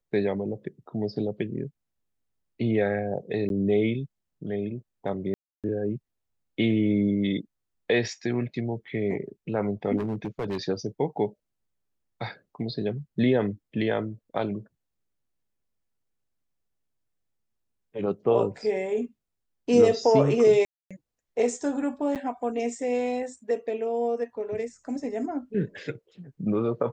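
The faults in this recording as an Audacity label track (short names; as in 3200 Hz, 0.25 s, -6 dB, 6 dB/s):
3.490000	3.500000	gap 12 ms
5.340000	5.640000	gap 0.297 s
9.970000	10.580000	clipped -25.5 dBFS
20.650000	20.910000	gap 0.256 s
22.150000	22.160000	gap 8.2 ms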